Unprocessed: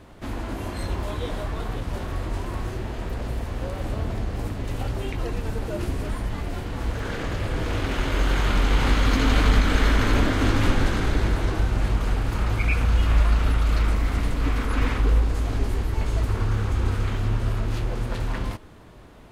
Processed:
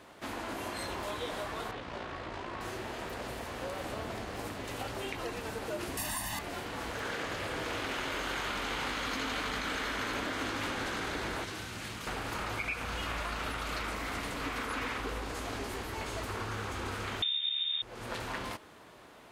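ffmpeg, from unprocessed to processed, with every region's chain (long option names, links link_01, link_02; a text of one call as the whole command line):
ffmpeg -i in.wav -filter_complex "[0:a]asettb=1/sr,asplit=3[link_01][link_02][link_03];[link_01]atrim=end=1.714[link_04];[link_02]atrim=start=1.71:end=2.61,asetpts=PTS-STARTPTS,afade=type=in:duration=0.004:curve=qsin,afade=type=out:start_time=0.896:duration=0.004:curve=qsin,lowpass=4300,tremolo=f=57:d=0.462[link_05];[link_03]atrim=start=2.606[link_06];[link_04][link_05]acrossfade=duration=0.004:curve1=hsin:curve2=qsin[link_07];[link_07][link_06]acrossfade=duration=0.004:curve1=qsin:curve2=hsin,asettb=1/sr,asplit=3[link_08][link_09][link_10];[link_08]atrim=end=5.974[link_11];[link_09]atrim=start=5.97:end=6.39,asetpts=PTS-STARTPTS,afade=type=in:duration=0.004:curve=qsin,afade=type=out:start_time=0.416:duration=0.004:curve=qsin,aemphasis=mode=production:type=75fm,aecho=1:1:1.1:0.91,atrim=end_sample=18522[link_12];[link_10]atrim=start=6.386[link_13];[link_11][link_12]acrossfade=duration=0.004:curve1=hsin:curve2=qsin[link_14];[link_14][link_13]acrossfade=duration=0.004:curve1=qsin:curve2=hsin,asettb=1/sr,asplit=3[link_15][link_16][link_17];[link_15]atrim=end=11.444[link_18];[link_16]atrim=start=11.44:end=12.07,asetpts=PTS-STARTPTS,afade=type=in:duration=0.004:curve=qsin,afade=type=out:start_time=0.626:duration=0.004:curve=qsin,highpass=98,equalizer=frequency=670:width_type=o:width=2.7:gain=-11[link_19];[link_17]atrim=start=12.066[link_20];[link_18][link_19]acrossfade=duration=0.004:curve1=hsin:curve2=qsin[link_21];[link_21][link_20]acrossfade=duration=0.004:curve1=qsin:curve2=hsin,asettb=1/sr,asplit=3[link_22][link_23][link_24];[link_22]atrim=end=17.224[link_25];[link_23]atrim=start=17.22:end=17.82,asetpts=PTS-STARTPTS,afade=type=in:duration=0.004:curve=qsin,afade=type=out:start_time=0.596:duration=0.004:curve=qsin,lowpass=frequency=3100:width_type=q:width=0.5098,lowpass=frequency=3100:width_type=q:width=0.6013,lowpass=frequency=3100:width_type=q:width=0.9,lowpass=frequency=3100:width_type=q:width=2.563,afreqshift=-3700,highshelf=frequency=2600:gain=10.5[link_26];[link_24]atrim=start=17.816[link_27];[link_25][link_26]acrossfade=duration=0.004:curve1=hsin:curve2=qsin[link_28];[link_28][link_27]acrossfade=duration=0.004:curve1=qsin:curve2=hsin,highpass=frequency=640:poles=1,acompressor=threshold=-32dB:ratio=6" out.wav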